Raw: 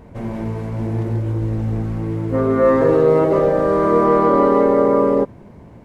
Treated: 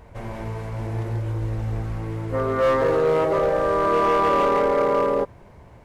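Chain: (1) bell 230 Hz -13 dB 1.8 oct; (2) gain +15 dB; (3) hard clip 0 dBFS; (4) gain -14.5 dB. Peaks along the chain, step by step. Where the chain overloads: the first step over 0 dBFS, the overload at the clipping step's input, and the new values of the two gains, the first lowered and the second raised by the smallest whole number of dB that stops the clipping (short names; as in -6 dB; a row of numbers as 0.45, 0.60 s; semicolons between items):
-8.0, +7.0, 0.0, -14.5 dBFS; step 2, 7.0 dB; step 2 +8 dB, step 4 -7.5 dB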